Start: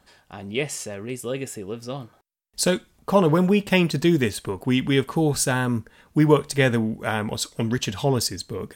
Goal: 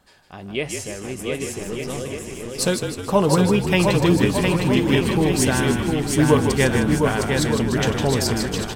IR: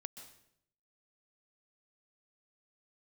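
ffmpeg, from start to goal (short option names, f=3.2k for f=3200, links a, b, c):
-filter_complex "[0:a]asplit=2[a][b];[b]asplit=6[c][d][e][f][g][h];[c]adelay=155,afreqshift=-44,volume=-7dB[i];[d]adelay=310,afreqshift=-88,volume=-12.7dB[j];[e]adelay=465,afreqshift=-132,volume=-18.4dB[k];[f]adelay=620,afreqshift=-176,volume=-24dB[l];[g]adelay=775,afreqshift=-220,volume=-29.7dB[m];[h]adelay=930,afreqshift=-264,volume=-35.4dB[n];[i][j][k][l][m][n]amix=inputs=6:normalize=0[o];[a][o]amix=inputs=2:normalize=0,asettb=1/sr,asplit=3[p][q][r];[p]atrim=end=1.594[s];[q]atrim=start=1.59:end=2.01,asetpts=PTS-STARTPTS,afade=t=in:d=0.004:c=qsin,afade=t=out:st=0.416:d=0.004:c=qsin,aeval=exprs='0.1*(cos(1*acos(clip(val(0)/0.1,-1,1)))-cos(1*PI/2))+0.00891*(cos(8*acos(clip(val(0)/0.1,-1,1)))-cos(8*PI/2))':c=same[t];[r]atrim=start=2.006[u];[s][t]acrossfade=d=0.004:c1=hsin:c2=qsin[v];[v][u]acrossfade=d=0.004:c1=qsin:c2=hsin,asplit=2[w][x];[x]aecho=0:1:710|1207|1555|1798|1969:0.631|0.398|0.251|0.158|0.1[y];[w][y]amix=inputs=2:normalize=0"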